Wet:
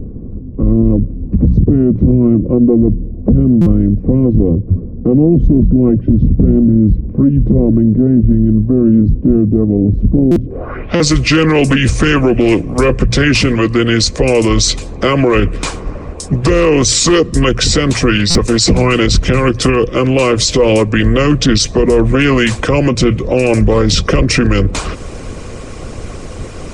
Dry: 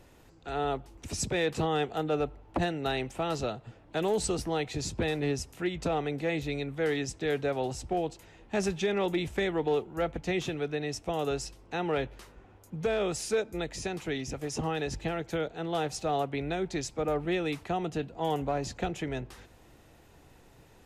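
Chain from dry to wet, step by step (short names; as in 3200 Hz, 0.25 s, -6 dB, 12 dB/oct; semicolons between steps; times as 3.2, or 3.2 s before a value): dynamic EQ 1000 Hz, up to -8 dB, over -46 dBFS, Q 0.92; small resonant body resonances 620/1400/3100 Hz, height 14 dB, ringing for 45 ms; varispeed -22%; low-pass sweep 240 Hz -> 8000 Hz, 10.43–11.04; harmonic-percussive split harmonic -11 dB; low shelf 160 Hz +10.5 dB; notches 60/120/180 Hz; stuck buffer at 3.61/10.31/10.95/18.3, samples 256, times 8; maximiser +30 dB; Doppler distortion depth 0.18 ms; gain -1 dB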